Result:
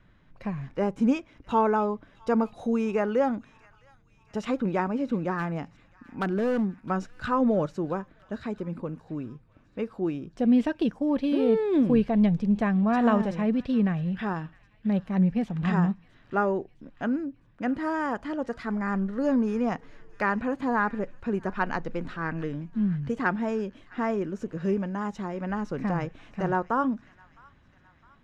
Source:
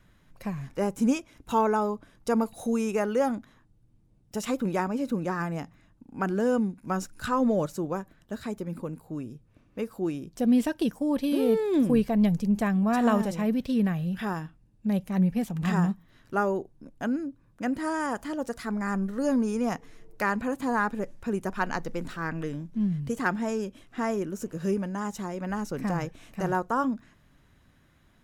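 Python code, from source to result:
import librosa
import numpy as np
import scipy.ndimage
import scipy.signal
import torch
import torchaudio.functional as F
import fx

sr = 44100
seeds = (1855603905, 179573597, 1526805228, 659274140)

y = scipy.signal.sosfilt(scipy.signal.butter(2, 3300.0, 'lowpass', fs=sr, output='sos'), x)
y = fx.clip_hard(y, sr, threshold_db=-22.5, at=(5.34, 6.77))
y = fx.echo_wet_highpass(y, sr, ms=660, feedback_pct=55, hz=1700.0, wet_db=-19.0)
y = F.gain(torch.from_numpy(y), 1.0).numpy()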